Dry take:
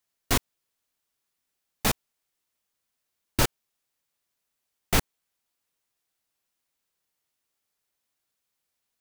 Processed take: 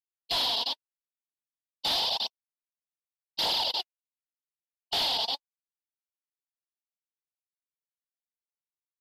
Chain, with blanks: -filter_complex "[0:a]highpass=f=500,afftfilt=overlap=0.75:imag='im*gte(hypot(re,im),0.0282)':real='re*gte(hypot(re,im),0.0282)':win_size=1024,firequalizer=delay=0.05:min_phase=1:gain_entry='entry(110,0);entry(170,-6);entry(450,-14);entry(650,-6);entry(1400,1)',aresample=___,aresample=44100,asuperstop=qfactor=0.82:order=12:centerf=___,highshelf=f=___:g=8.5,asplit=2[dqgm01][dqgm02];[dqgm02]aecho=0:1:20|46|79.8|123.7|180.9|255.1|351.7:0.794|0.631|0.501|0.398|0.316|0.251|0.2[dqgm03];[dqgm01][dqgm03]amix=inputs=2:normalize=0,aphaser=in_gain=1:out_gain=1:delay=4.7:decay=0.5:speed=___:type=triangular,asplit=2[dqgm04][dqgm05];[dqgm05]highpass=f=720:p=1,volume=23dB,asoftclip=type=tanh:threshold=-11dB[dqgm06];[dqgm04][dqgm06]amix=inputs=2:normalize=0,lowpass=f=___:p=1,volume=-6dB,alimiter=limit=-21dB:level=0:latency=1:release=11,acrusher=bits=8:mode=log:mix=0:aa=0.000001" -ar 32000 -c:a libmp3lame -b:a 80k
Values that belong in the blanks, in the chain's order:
11025, 1700, 4.1k, 0.86, 2.5k